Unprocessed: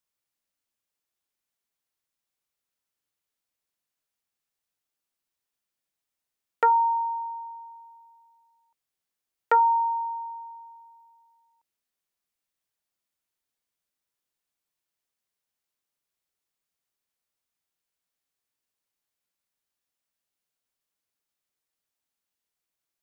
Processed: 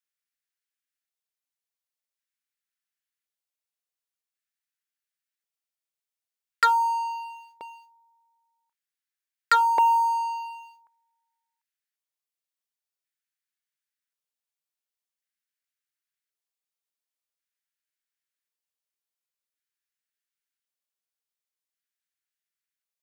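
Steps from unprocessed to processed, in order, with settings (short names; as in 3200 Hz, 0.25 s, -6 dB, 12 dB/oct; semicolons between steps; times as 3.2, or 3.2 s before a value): tilt shelf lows -9 dB, about 670 Hz; LFO high-pass square 0.46 Hz 450–1600 Hz; sample leveller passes 3; gain -8.5 dB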